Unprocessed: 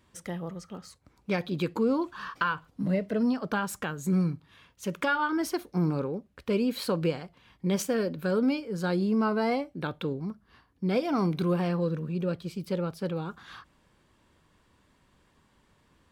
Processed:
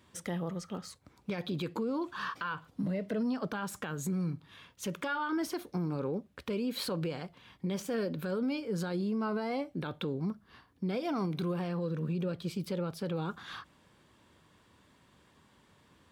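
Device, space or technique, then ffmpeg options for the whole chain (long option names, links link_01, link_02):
broadcast voice chain: -af "highpass=76,deesser=0.75,acompressor=threshold=-30dB:ratio=5,equalizer=frequency=3500:width_type=o:width=0.24:gain=3,alimiter=level_in=4dB:limit=-24dB:level=0:latency=1:release=21,volume=-4dB,volume=2dB"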